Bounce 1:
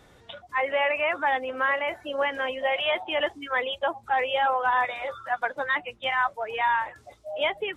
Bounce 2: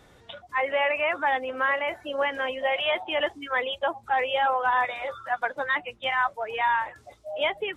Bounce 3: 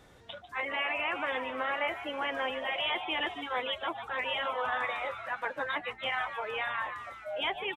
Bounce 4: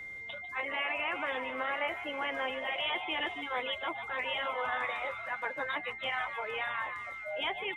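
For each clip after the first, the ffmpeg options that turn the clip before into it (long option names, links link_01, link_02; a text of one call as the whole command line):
ffmpeg -i in.wav -af anull out.wav
ffmpeg -i in.wav -filter_complex "[0:a]asplit=7[link_01][link_02][link_03][link_04][link_05][link_06][link_07];[link_02]adelay=147,afreqshift=130,volume=-15dB[link_08];[link_03]adelay=294,afreqshift=260,volume=-19.4dB[link_09];[link_04]adelay=441,afreqshift=390,volume=-23.9dB[link_10];[link_05]adelay=588,afreqshift=520,volume=-28.3dB[link_11];[link_06]adelay=735,afreqshift=650,volume=-32.7dB[link_12];[link_07]adelay=882,afreqshift=780,volume=-37.2dB[link_13];[link_01][link_08][link_09][link_10][link_11][link_12][link_13]amix=inputs=7:normalize=0,afftfilt=real='re*lt(hypot(re,im),0.355)':imag='im*lt(hypot(re,im),0.355)':win_size=1024:overlap=0.75,volume=-2.5dB" out.wav
ffmpeg -i in.wav -af "aeval=exprs='val(0)+0.0112*sin(2*PI*2100*n/s)':channel_layout=same,volume=-2dB" out.wav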